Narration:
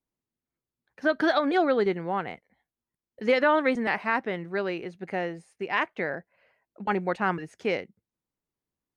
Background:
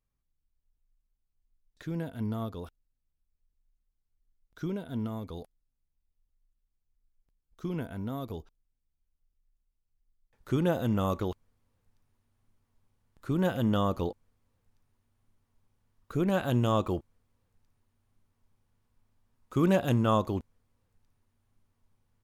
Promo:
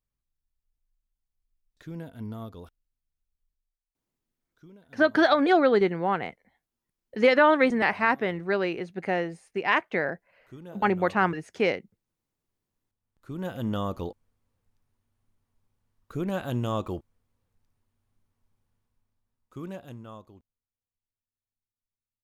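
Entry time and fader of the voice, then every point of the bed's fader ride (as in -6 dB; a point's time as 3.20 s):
3.95 s, +3.0 dB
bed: 3.49 s -4 dB
3.76 s -17.5 dB
12.70 s -17.5 dB
13.68 s -2.5 dB
18.72 s -2.5 dB
20.74 s -26.5 dB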